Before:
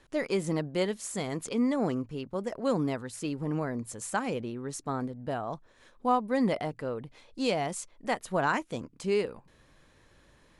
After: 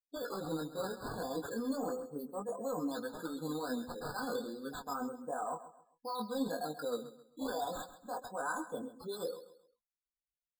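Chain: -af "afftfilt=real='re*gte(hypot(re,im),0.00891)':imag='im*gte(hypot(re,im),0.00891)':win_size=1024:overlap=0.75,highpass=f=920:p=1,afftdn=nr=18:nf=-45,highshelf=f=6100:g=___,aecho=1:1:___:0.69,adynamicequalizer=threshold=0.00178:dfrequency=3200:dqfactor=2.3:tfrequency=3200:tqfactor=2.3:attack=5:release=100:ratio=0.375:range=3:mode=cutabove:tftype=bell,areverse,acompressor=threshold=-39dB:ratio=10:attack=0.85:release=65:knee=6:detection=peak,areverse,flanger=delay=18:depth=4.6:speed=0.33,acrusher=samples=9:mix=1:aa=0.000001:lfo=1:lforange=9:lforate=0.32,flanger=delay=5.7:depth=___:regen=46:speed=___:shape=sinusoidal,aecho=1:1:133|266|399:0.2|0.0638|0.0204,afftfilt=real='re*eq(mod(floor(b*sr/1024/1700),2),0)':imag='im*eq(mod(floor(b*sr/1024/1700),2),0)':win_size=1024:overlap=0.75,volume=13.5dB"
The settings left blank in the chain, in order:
-8, 4, 2.6, 1.5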